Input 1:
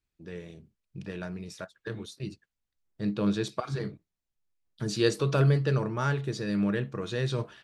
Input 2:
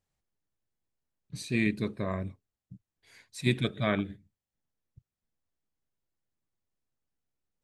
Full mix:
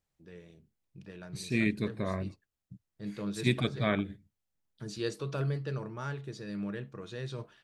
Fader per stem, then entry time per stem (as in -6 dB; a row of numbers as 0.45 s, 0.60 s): -9.5 dB, -1.0 dB; 0.00 s, 0.00 s